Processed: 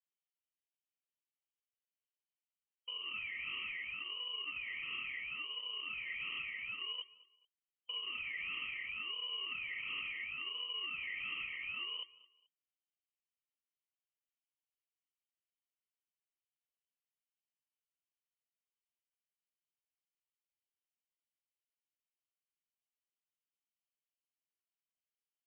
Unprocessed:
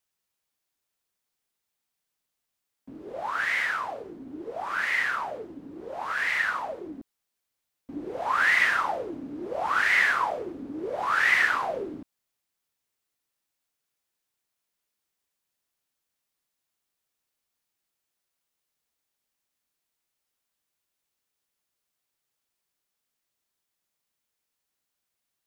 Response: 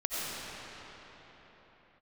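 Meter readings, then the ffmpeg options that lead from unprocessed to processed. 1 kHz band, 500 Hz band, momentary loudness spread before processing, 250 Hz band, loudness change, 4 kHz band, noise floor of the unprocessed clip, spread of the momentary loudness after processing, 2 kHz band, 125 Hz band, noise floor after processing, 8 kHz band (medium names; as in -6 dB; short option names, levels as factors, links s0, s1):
-26.0 dB, -30.0 dB, 20 LU, -27.5 dB, -14.5 dB, +0.5 dB, -83 dBFS, 3 LU, -16.0 dB, under -15 dB, under -85 dBFS, under -30 dB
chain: -filter_complex "[0:a]highpass=75,aemphasis=mode=reproduction:type=bsi,afwtdn=0.00891,equalizer=f=180:t=o:w=0.77:g=3,acompressor=threshold=0.02:ratio=6,acrusher=samples=18:mix=1:aa=0.000001,asoftclip=type=tanh:threshold=0.0224,asuperstop=centerf=1600:order=12:qfactor=3,asplit=2[s0][s1];[s1]aecho=0:1:216|432:0.0891|0.0267[s2];[s0][s2]amix=inputs=2:normalize=0,lowpass=f=2700:t=q:w=0.5098,lowpass=f=2700:t=q:w=0.6013,lowpass=f=2700:t=q:w=0.9,lowpass=f=2700:t=q:w=2.563,afreqshift=-3200,volume=0.75"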